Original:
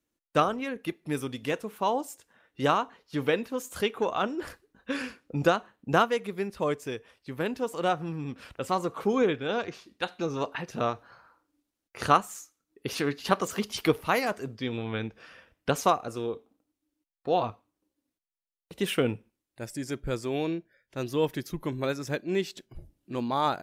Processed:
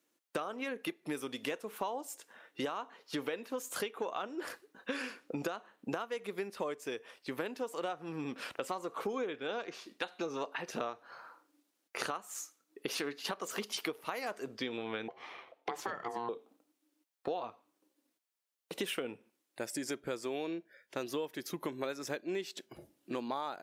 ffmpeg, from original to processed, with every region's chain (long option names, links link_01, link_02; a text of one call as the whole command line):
ffmpeg -i in.wav -filter_complex "[0:a]asettb=1/sr,asplit=3[link_01][link_02][link_03];[link_01]atrim=end=15.084[link_04];[link_02]atrim=start=15.08:end=16.29,asetpts=PTS-STARTPTS,afade=type=in:duration=0.004:curve=qsin,afade=type=out:start_time=1.206:duration=0.004:curve=qsin,bass=frequency=250:gain=7,treble=frequency=4000:gain=-10,acompressor=threshold=-28dB:ratio=3:attack=3.2:release=140:knee=1:detection=peak,aeval=exprs='val(0)*sin(2*PI*590*n/s)':channel_layout=same[link_05];[link_03]atrim=start=16.286[link_06];[link_04][link_05]acrossfade=duration=0.004:curve1=hsin:curve2=qsin[link_07];[link_07][link_06]acrossfade=duration=0.004:curve1=qsin:curve2=hsin,highpass=310,alimiter=limit=-16dB:level=0:latency=1:release=238,acompressor=threshold=-41dB:ratio=6,volume=6dB" out.wav